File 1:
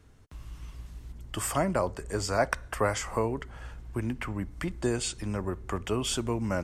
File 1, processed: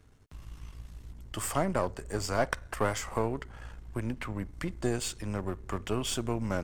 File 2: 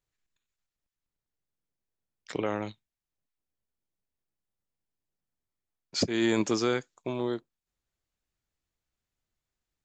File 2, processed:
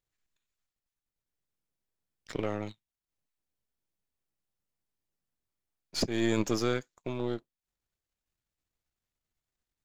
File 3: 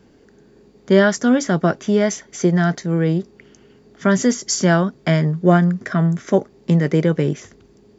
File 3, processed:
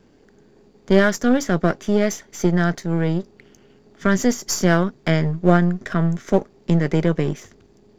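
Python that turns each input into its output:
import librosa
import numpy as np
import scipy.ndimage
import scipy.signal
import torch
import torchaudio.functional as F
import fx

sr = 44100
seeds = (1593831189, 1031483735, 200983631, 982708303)

y = np.where(x < 0.0, 10.0 ** (-7.0 / 20.0) * x, x)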